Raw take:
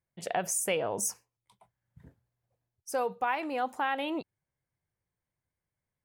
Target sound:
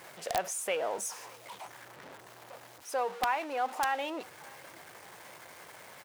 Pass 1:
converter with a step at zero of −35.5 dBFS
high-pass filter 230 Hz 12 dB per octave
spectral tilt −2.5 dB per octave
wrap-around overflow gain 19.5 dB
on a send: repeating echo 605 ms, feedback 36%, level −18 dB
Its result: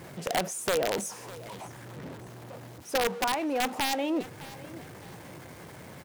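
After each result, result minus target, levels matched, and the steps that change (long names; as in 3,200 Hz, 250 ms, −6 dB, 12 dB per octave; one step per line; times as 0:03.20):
250 Hz band +9.5 dB; echo-to-direct +7 dB
change: high-pass filter 680 Hz 12 dB per octave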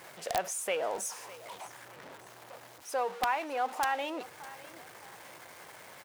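echo-to-direct +7 dB
change: repeating echo 605 ms, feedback 36%, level −25 dB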